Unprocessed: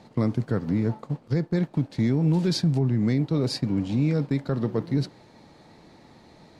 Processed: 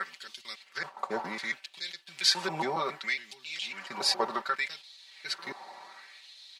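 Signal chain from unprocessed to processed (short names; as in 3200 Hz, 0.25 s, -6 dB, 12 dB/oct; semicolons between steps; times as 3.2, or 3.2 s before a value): slices in reverse order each 0.138 s, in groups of 5; LFO high-pass sine 0.66 Hz 810–3600 Hz; comb 5.2 ms, depth 80%; gain +3.5 dB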